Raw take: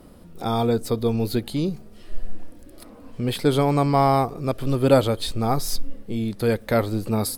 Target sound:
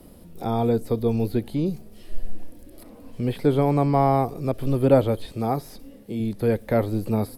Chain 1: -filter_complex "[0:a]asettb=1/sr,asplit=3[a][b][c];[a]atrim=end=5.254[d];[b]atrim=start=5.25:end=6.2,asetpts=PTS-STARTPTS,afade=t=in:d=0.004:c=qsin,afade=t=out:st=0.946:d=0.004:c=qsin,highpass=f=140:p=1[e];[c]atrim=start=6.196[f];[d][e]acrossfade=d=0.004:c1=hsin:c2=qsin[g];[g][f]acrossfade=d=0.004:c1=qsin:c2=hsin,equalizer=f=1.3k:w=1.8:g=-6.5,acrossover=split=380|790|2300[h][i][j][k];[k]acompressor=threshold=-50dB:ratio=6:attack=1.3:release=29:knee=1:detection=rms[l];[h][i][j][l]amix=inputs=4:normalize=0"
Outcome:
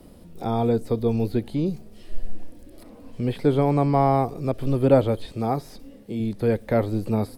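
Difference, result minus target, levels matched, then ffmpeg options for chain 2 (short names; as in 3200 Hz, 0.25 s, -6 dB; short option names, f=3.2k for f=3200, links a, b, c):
8000 Hz band -3.0 dB
-filter_complex "[0:a]asettb=1/sr,asplit=3[a][b][c];[a]atrim=end=5.254[d];[b]atrim=start=5.25:end=6.2,asetpts=PTS-STARTPTS,afade=t=in:d=0.004:c=qsin,afade=t=out:st=0.946:d=0.004:c=qsin,highpass=f=140:p=1[e];[c]atrim=start=6.196[f];[d][e]acrossfade=d=0.004:c1=hsin:c2=qsin[g];[g][f]acrossfade=d=0.004:c1=qsin:c2=hsin,equalizer=f=1.3k:w=1.8:g=-6.5,acrossover=split=380|790|2300[h][i][j][k];[k]acompressor=threshold=-50dB:ratio=6:attack=1.3:release=29:knee=1:detection=rms,equalizer=f=12k:w=2:g=8.5[l];[h][i][j][l]amix=inputs=4:normalize=0"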